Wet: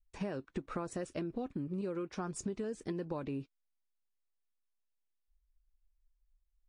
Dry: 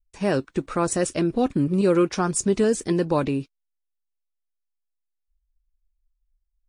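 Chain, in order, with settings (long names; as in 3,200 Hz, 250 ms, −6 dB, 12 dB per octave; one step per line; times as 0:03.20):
low-pass filter 2,800 Hz 6 dB per octave
downward compressor 16 to 1, threshold −32 dBFS, peak gain reduction 18 dB
level −2.5 dB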